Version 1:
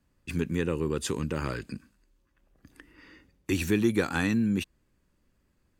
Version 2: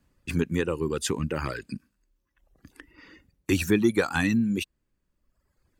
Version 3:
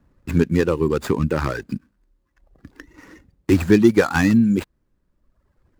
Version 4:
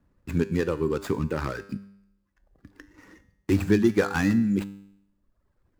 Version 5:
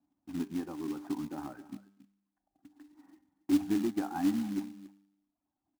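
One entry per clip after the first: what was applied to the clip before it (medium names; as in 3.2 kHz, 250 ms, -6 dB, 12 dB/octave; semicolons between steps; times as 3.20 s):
reverb removal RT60 1.2 s; trim +4 dB
median filter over 15 samples; trim +8.5 dB
feedback comb 99 Hz, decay 0.75 s, harmonics all, mix 60%
two resonant band-passes 470 Hz, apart 1.4 oct; delay 277 ms -17.5 dB; short-mantissa float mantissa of 2-bit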